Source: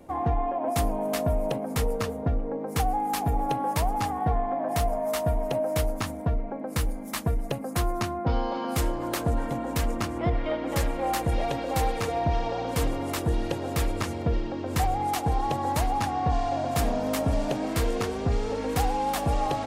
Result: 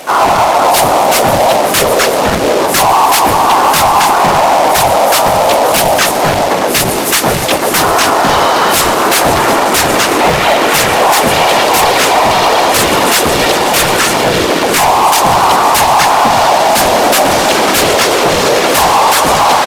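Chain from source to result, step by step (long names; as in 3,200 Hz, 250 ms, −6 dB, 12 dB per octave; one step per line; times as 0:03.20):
on a send at −15 dB: convolution reverb RT60 4.2 s, pre-delay 113 ms
on the sum: random phases in short frames
spectral tilt +2 dB per octave
pitch-shifted copies added −4 semitones −12 dB, +3 semitones −15 dB, +4 semitones −3 dB
log-companded quantiser 4 bits
downsampling to 32,000 Hz
mid-hump overdrive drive 17 dB, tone 6,200 Hz, clips at −10.5 dBFS
automatic gain control gain up to 4 dB
boost into a limiter +14.5 dB
level −1 dB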